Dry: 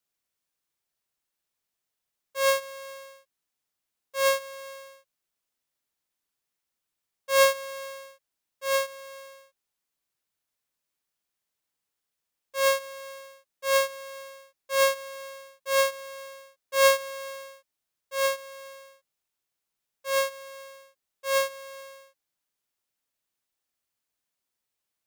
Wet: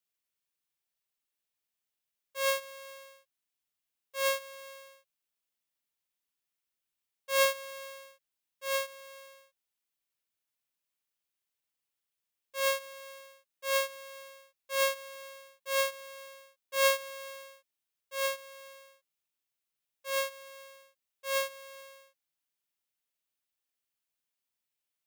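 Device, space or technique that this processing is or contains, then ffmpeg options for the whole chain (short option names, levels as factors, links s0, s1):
presence and air boost: -af "equalizer=f=2800:t=o:w=1.1:g=4.5,highshelf=f=9700:g=6,volume=0.422"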